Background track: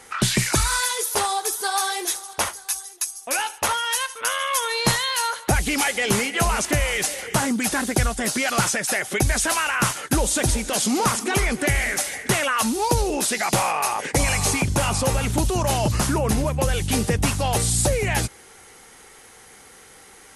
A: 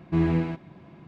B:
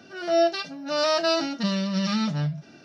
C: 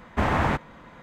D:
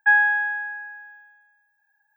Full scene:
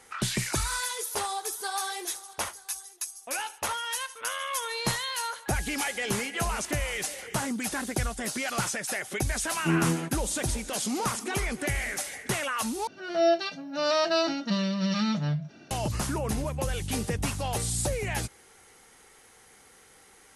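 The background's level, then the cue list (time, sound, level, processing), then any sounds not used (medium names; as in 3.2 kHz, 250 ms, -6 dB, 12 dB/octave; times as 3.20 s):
background track -8.5 dB
5.40 s: add D -12.5 dB + compression, threshold -33 dBFS
9.53 s: add A -2 dB + high-pass 140 Hz 24 dB/octave
12.87 s: replace with B -2 dB + band-stop 5.1 kHz, Q 9.5
not used: C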